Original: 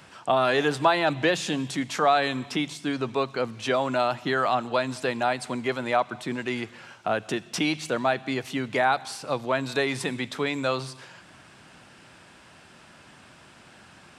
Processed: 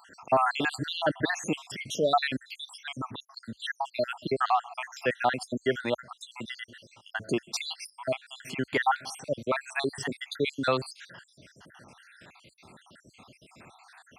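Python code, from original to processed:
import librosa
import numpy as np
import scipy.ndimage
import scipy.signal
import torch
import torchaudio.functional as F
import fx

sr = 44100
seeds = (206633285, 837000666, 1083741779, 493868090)

y = fx.spec_dropout(x, sr, seeds[0], share_pct=71)
y = scipy.signal.sosfilt(scipy.signal.butter(4, 48.0, 'highpass', fs=sr, output='sos'), y)
y = y * 10.0 ** (1.5 / 20.0)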